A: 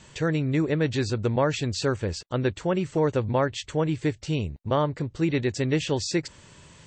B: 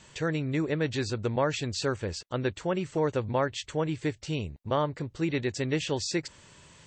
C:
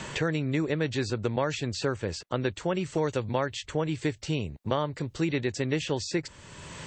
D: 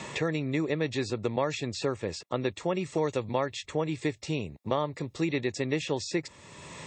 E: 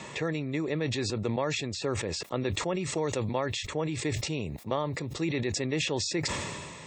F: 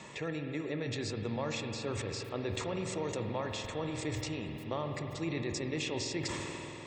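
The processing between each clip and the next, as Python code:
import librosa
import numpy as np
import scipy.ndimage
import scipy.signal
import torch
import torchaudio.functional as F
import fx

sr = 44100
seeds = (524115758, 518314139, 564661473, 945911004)

y1 = fx.low_shelf(x, sr, hz=400.0, db=-4.0)
y1 = y1 * librosa.db_to_amplitude(-2.0)
y2 = fx.band_squash(y1, sr, depth_pct=70)
y3 = fx.notch_comb(y2, sr, f0_hz=1500.0)
y4 = fx.sustainer(y3, sr, db_per_s=30.0)
y4 = y4 * librosa.db_to_amplitude(-2.5)
y5 = fx.rev_spring(y4, sr, rt60_s=4.0, pass_ms=(48,), chirp_ms=75, drr_db=4.0)
y5 = y5 * librosa.db_to_amplitude(-7.0)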